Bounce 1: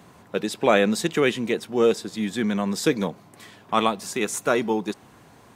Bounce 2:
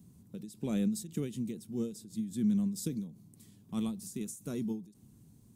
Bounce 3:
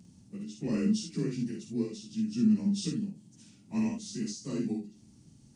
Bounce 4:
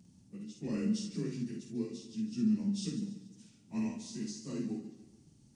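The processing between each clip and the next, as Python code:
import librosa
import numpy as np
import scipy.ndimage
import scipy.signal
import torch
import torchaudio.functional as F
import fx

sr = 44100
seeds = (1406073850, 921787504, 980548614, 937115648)

y1 = fx.curve_eq(x, sr, hz=(210.0, 640.0, 1700.0, 10000.0), db=(0, -25, -28, -2))
y1 = fx.end_taper(y1, sr, db_per_s=130.0)
y1 = y1 * librosa.db_to_amplitude(-3.0)
y2 = fx.partial_stretch(y1, sr, pct=89)
y2 = fx.room_early_taps(y2, sr, ms=(50, 70), db=(-4.5, -10.0))
y2 = y2 * librosa.db_to_amplitude(3.5)
y3 = fx.echo_warbled(y2, sr, ms=143, feedback_pct=45, rate_hz=2.8, cents=73, wet_db=-12.5)
y3 = y3 * librosa.db_to_amplitude(-5.0)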